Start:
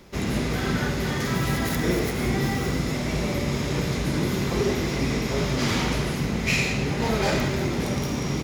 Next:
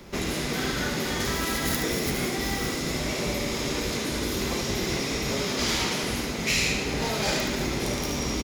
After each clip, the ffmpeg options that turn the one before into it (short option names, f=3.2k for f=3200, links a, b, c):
-filter_complex "[0:a]aecho=1:1:73:0.501,acrossover=split=130|3000[a][b][c];[b]acompressor=threshold=-32dB:ratio=2.5[d];[a][d][c]amix=inputs=3:normalize=0,afftfilt=real='re*lt(hypot(re,im),0.251)':imag='im*lt(hypot(re,im),0.251)':win_size=1024:overlap=0.75,volume=3.5dB"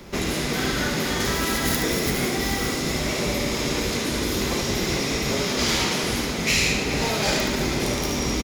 -af "aecho=1:1:434:0.224,volume=3.5dB"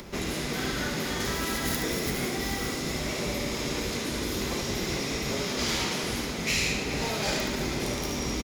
-af "acompressor=mode=upward:threshold=-32dB:ratio=2.5,volume=-6dB"